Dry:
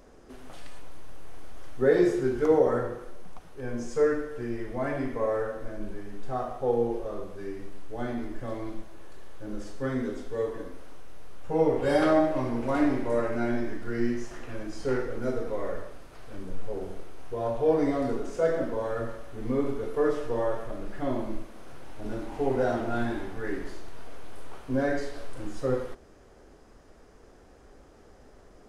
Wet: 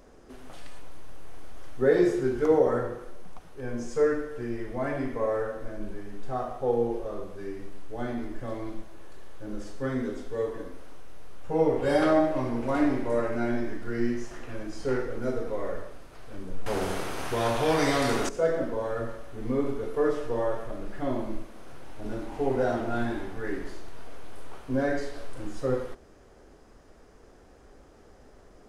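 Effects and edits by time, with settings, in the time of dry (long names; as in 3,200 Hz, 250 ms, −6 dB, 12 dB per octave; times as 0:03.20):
0:16.66–0:18.29: every bin compressed towards the loudest bin 2 to 1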